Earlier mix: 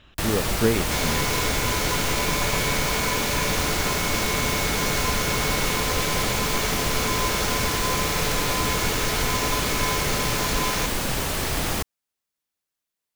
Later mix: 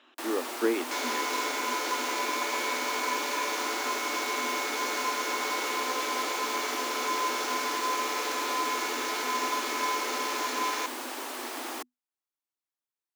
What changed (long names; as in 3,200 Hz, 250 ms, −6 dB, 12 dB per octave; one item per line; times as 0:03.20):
first sound −5.5 dB
master: add Chebyshev high-pass with heavy ripple 240 Hz, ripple 6 dB